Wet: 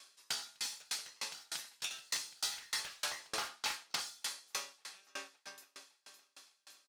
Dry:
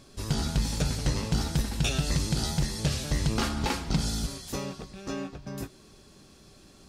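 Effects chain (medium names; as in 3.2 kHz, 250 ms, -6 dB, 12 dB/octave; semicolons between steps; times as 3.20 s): high-pass 1.4 kHz 12 dB/octave; 1.44–1.91 s: compression, threshold -37 dBFS, peak gain reduction 10 dB; 2.51–3.55 s: peaking EQ 2.1 kHz -> 450 Hz +11.5 dB 2.3 oct; feedback delay 562 ms, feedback 54%, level -14 dB; reverberation, pre-delay 3 ms, DRR 10.5 dB; saturation -30.5 dBFS, distortion -12 dB; sawtooth tremolo in dB decaying 3.3 Hz, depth 34 dB; trim +5 dB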